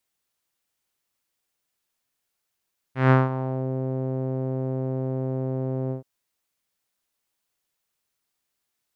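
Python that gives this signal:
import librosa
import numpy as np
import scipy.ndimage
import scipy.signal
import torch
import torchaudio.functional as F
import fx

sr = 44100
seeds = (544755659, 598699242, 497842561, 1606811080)

y = fx.sub_voice(sr, note=48, wave='saw', cutoff_hz=520.0, q=1.7, env_oct=2.0, env_s=0.72, attack_ms=157.0, decay_s=0.18, sustain_db=-13.0, release_s=0.12, note_s=2.96, slope=12)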